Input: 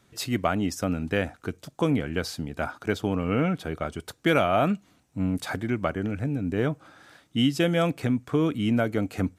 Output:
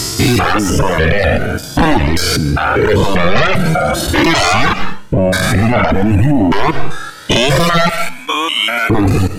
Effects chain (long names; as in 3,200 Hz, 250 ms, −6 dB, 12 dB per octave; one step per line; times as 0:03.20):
spectrum averaged block by block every 200 ms
0:03.34–0:04.07: comb filter 5.7 ms, depth 75%
0:05.87–0:06.38: high-shelf EQ 8,400 Hz +7 dB
0:07.89–0:08.90: high-pass filter 1,400 Hz 12 dB per octave
sine wavefolder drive 17 dB, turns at −10 dBFS
reverb reduction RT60 1.9 s
on a send at −15 dB: convolution reverb RT60 0.40 s, pre-delay 100 ms
on the sum: boost into a limiter +17 dB
flanger whose copies keep moving one way rising 0.46 Hz